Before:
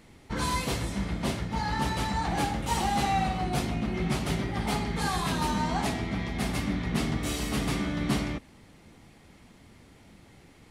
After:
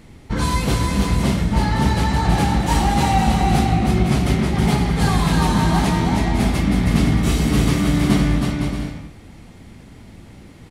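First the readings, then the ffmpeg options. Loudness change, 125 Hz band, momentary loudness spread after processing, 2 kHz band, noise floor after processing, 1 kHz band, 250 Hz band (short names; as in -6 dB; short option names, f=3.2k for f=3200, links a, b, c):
+11.0 dB, +14.0 dB, 4 LU, +8.0 dB, -42 dBFS, +8.5 dB, +12.0 dB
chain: -af "lowshelf=f=250:g=8,aecho=1:1:320|512|627.2|696.3|737.8:0.631|0.398|0.251|0.158|0.1,volume=5.5dB"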